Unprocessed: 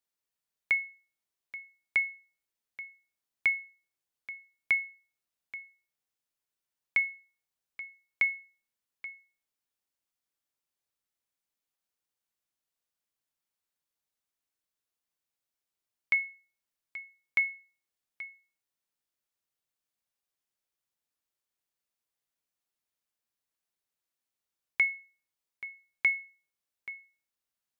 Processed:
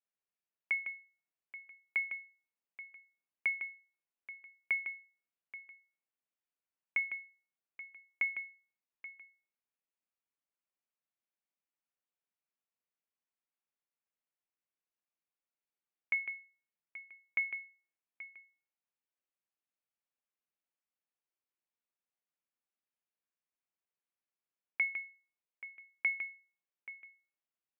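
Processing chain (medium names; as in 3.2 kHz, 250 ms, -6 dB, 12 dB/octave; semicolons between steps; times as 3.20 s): elliptic band-pass 170–2700 Hz; delay 154 ms -8.5 dB; trim -6 dB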